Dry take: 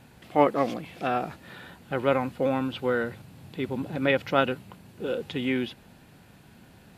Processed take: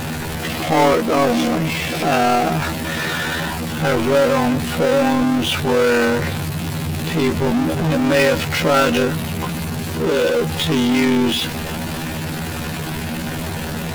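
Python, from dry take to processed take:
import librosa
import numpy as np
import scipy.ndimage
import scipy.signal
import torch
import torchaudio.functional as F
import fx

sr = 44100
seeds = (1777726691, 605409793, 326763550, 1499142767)

y = fx.power_curve(x, sr, exponent=0.35)
y = fx.stretch_grains(y, sr, factor=2.0, grain_ms=50.0)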